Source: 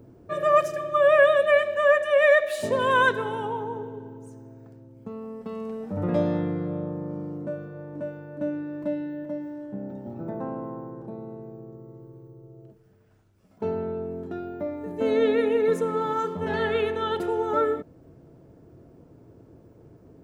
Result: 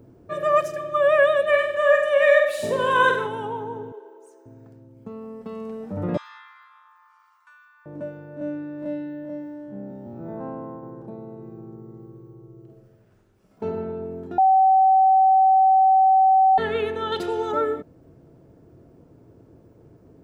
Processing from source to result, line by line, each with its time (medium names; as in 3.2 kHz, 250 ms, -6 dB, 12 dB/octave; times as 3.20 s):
1.44–3.27 s: flutter echo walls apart 8.2 m, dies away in 0.57 s
3.92–4.46 s: elliptic high-pass 350 Hz
6.17–7.86 s: steep high-pass 970 Hz 72 dB/octave
8.36–10.83 s: spectral blur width 84 ms
11.33–13.64 s: reverb throw, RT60 1.6 s, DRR 2 dB
14.38–16.58 s: bleep 764 Hz -12.5 dBFS
17.12–17.52 s: peaking EQ 4.4 kHz +12 dB 1.5 oct